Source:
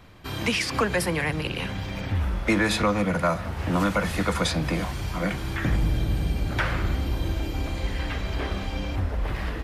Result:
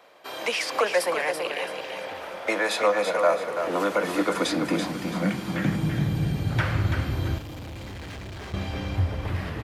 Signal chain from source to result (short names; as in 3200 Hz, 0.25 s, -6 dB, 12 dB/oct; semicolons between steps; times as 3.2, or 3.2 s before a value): feedback echo 0.334 s, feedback 32%, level -6.5 dB; high-pass sweep 560 Hz -> 100 Hz, 3.15–6.8; 7.38–8.54 hard clip -34 dBFS, distortion -15 dB; gain -2 dB